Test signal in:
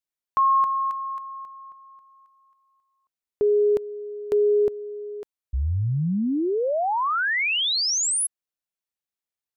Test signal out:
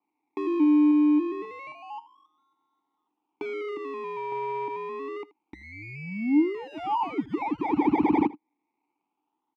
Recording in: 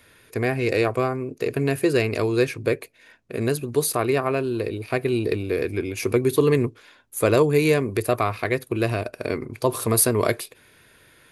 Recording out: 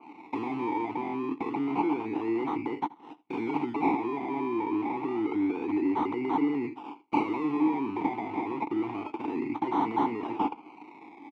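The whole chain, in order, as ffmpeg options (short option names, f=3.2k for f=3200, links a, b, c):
-filter_complex "[0:a]agate=range=-17dB:threshold=-47dB:ratio=3:release=50:detection=peak,bass=f=250:g=6,treble=f=4k:g=-3,alimiter=limit=-16dB:level=0:latency=1:release=107,acompressor=threshold=-39dB:ratio=3:attack=28:release=30:knee=1,aexciter=amount=6.1:drive=7.3:freq=4.1k,acrusher=samples=25:mix=1:aa=0.000001:lfo=1:lforange=15:lforate=0.28,asplit=2[a][b];[b]highpass=f=720:p=1,volume=34dB,asoftclip=type=tanh:threshold=-6dB[c];[a][c]amix=inputs=2:normalize=0,lowpass=f=2.6k:p=1,volume=-6dB,asplit=3[d][e][f];[d]bandpass=f=300:t=q:w=8,volume=0dB[g];[e]bandpass=f=870:t=q:w=8,volume=-6dB[h];[f]bandpass=f=2.24k:t=q:w=8,volume=-9dB[i];[g][h][i]amix=inputs=3:normalize=0,asplit=2[j][k];[k]aecho=0:1:80:0.0944[l];[j][l]amix=inputs=2:normalize=0,adynamicequalizer=threshold=0.00398:dfrequency=2700:dqfactor=0.7:tfrequency=2700:tqfactor=0.7:attack=5:release=100:ratio=0.375:range=4:mode=cutabove:tftype=highshelf"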